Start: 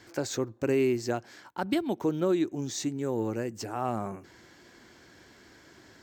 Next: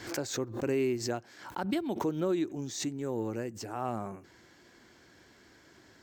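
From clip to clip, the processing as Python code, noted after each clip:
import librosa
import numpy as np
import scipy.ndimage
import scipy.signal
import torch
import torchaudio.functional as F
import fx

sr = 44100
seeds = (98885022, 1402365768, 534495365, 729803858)

y = fx.pre_swell(x, sr, db_per_s=90.0)
y = y * 10.0 ** (-4.0 / 20.0)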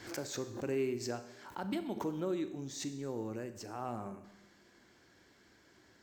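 y = fx.comb_fb(x, sr, f0_hz=200.0, decay_s=1.6, harmonics='all', damping=0.0, mix_pct=50)
y = fx.rev_schroeder(y, sr, rt60_s=0.85, comb_ms=29, drr_db=10.0)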